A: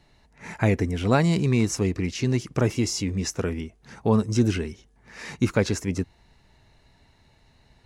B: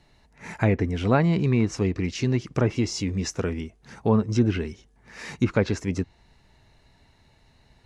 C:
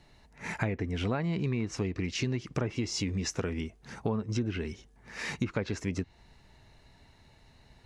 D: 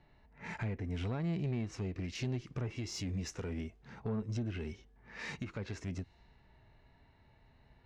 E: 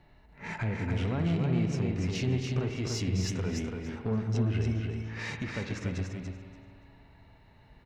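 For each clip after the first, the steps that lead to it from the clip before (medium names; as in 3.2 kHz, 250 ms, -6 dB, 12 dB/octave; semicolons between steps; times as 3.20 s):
low-pass that closes with the level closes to 2.5 kHz, closed at -16.5 dBFS
dynamic bell 2.6 kHz, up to +3 dB, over -45 dBFS, Q 0.75; compression 6:1, threshold -28 dBFS, peak gain reduction 13 dB
level-controlled noise filter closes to 2.3 kHz, open at -28 dBFS; harmonic-percussive split percussive -8 dB; valve stage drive 27 dB, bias 0.3; trim -1.5 dB
feedback delay 288 ms, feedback 18%, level -4 dB; on a send at -6.5 dB: reverberation RT60 2.3 s, pre-delay 54 ms; on the sum: trim +5 dB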